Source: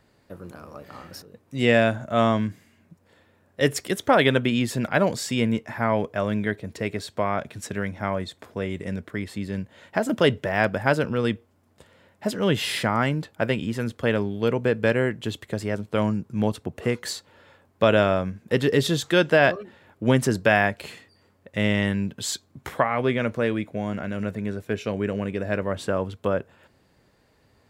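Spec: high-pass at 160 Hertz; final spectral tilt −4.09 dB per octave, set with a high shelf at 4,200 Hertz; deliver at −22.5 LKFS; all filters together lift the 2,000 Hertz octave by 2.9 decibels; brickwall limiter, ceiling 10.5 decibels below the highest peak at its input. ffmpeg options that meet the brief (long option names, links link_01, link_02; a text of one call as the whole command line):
ffmpeg -i in.wav -af "highpass=160,equalizer=frequency=2000:width_type=o:gain=5.5,highshelf=frequency=4200:gain=-9,volume=5dB,alimiter=limit=-8dB:level=0:latency=1" out.wav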